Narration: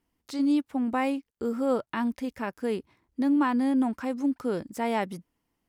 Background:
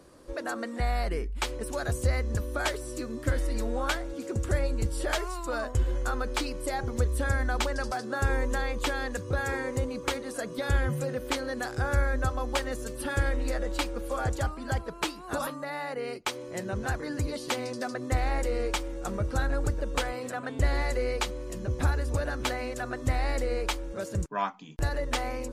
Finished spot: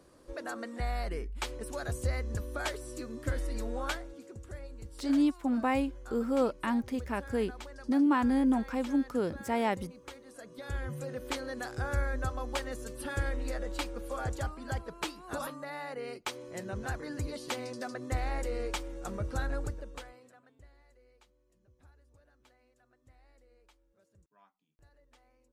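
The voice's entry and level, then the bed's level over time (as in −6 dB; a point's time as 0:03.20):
4.70 s, −2.0 dB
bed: 0:03.91 −5.5 dB
0:04.40 −17 dB
0:10.16 −17 dB
0:11.26 −5.5 dB
0:19.57 −5.5 dB
0:20.75 −35 dB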